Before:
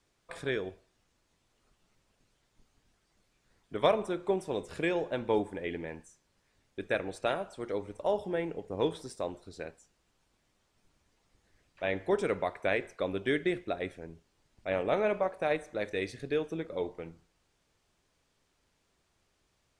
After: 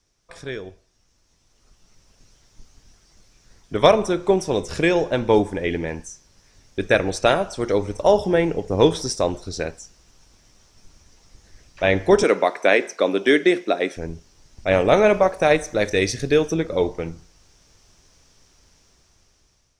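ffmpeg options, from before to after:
-filter_complex "[0:a]asettb=1/sr,asplit=3[a][b][c];[a]atrim=end=12.234[d];[b]atrim=start=12.23:end=13.97,asetpts=PTS-STARTPTS,afade=t=in:d=0.004:c=qsin,afade=t=out:st=1.736:d=0.004:c=qsin,highpass=f=230:w=0.5412,highpass=f=230:w=1.3066[e];[c]atrim=start=13.966[f];[d][e]acrossfade=d=0.004:c1=hsin:c2=qsin[g];[g][f]acrossfade=d=0.004:c1=qsin:c2=hsin,asettb=1/sr,asplit=3[h][i][j];[h]atrim=end=14.674[k];[i]atrim=start=14.67:end=16.54,asetpts=PTS-STARTPTS,afade=t=in:d=0.004:c=qsin,afade=t=out:st=1.866:d=0.004:c=qsin,highshelf=f=8.5k:g=7[l];[j]atrim=start=16.536[m];[k][l]acrossfade=d=0.004:c1=hsin:c2=qsin[n];[n][m]acrossfade=d=0.004:c1=qsin:c2=hsin,lowshelf=f=92:g=10.5,dynaudnorm=f=750:g=5:m=15dB,equalizer=f=5.7k:t=o:w=0.48:g=13.5"

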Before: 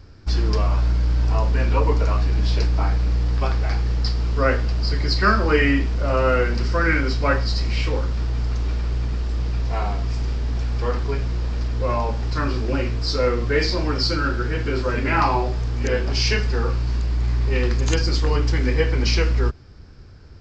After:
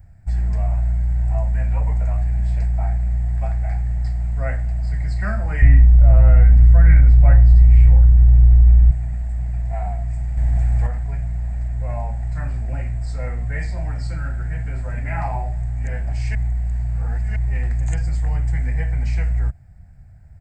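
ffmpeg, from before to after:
-filter_complex "[0:a]asettb=1/sr,asplit=3[a][b][c];[a]atrim=end=5.624[d];[b]atrim=start=5.62:end=8.91,asetpts=PTS-STARTPTS,afade=t=in:d=0.004:c=qsin,afade=t=out:st=3.286:d=0.004:c=qsin,aemphasis=mode=reproduction:type=bsi[e];[c]atrim=start=8.906[f];[d][e]acrossfade=d=0.004:c1=hsin:c2=qsin[g];[g][f]acrossfade=d=0.004:c1=qsin:c2=hsin,asettb=1/sr,asplit=3[h][i][j];[h]atrim=end=10.374[k];[i]atrim=start=10.37:end=10.87,asetpts=PTS-STARTPTS,afade=t=in:d=0.004:c=qsin,afade=t=out:st=0.496:d=0.004:c=qsin,acontrast=67[l];[j]atrim=start=10.866[m];[k][l]acrossfade=d=0.004:c1=hsin:c2=qsin[n];[n][m]acrossfade=d=0.004:c1=qsin:c2=hsin,asplit=3[o][p][q];[o]atrim=end=16.352[r];[p]atrim=start=16.348:end=17.362,asetpts=PTS-STARTPTS,areverse[s];[q]atrim=start=17.358[t];[r][s]acrossfade=d=0.004:c1=hsin:c2=hsin[u];[u][t]acrossfade=d=0.004:c1=hsin:c2=hsin,firequalizer=gain_entry='entry(160,0);entry(300,-20);entry(430,-23);entry(690,1);entry(1100,-19);entry(1900,-4);entry(3000,-22);entry(5600,-24);entry(8500,10)':delay=0.05:min_phase=1"

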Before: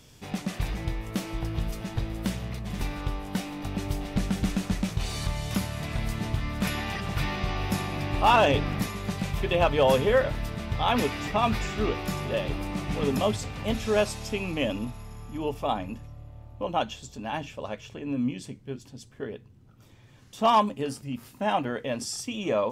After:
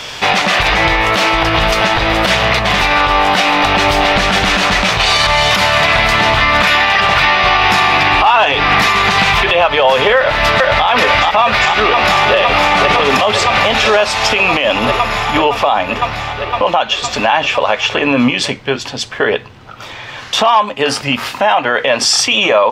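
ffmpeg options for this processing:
-filter_complex "[0:a]asettb=1/sr,asplit=3[a][b][c];[a]atrim=end=7.544[d];[b]atrim=start=7.54:end=9.48,asetpts=PTS-STARTPTS,afade=t=in:d=0.004:c=qsin,afade=t=out:st=1.936:d=0.004:c=qsin,bandreject=f=570:w=5.3[e];[c]atrim=start=9.476[f];[d][e]acrossfade=d=0.004:c1=hsin:c2=qsin[g];[g][f]acrossfade=d=0.004:c1=qsin:c2=hsin,asplit=2[h][i];[i]afade=t=in:st=10.17:d=0.01,afade=t=out:st=10.87:d=0.01,aecho=0:1:430|860|1290|1720|2150|2580|3010:0.891251|0.445625|0.222813|0.111406|0.0557032|0.0278516|0.0139258[j];[h][j]amix=inputs=2:normalize=0,asplit=2[k][l];[l]afade=t=in:st=11.42:d=0.01,afade=t=out:st=12.36:d=0.01,aecho=0:1:510|1020|1530|2040|2550|3060|3570|4080|4590|5100|5610|6120:0.354813|0.283851|0.227081|0.181664|0.145332|0.116265|0.0930122|0.0744098|0.0595278|0.0476222|0.0380978|0.0304782[m];[k][m]amix=inputs=2:normalize=0,acrossover=split=590 4800:gain=0.0891 1 0.1[n][o][p];[n][o][p]amix=inputs=3:normalize=0,acompressor=threshold=-41dB:ratio=3,alimiter=level_in=36dB:limit=-1dB:release=50:level=0:latency=1,volume=-1dB"

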